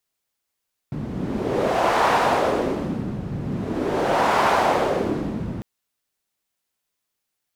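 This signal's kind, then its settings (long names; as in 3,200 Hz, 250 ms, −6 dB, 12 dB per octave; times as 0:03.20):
wind from filtered noise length 4.70 s, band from 160 Hz, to 890 Hz, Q 1.7, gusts 2, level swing 10 dB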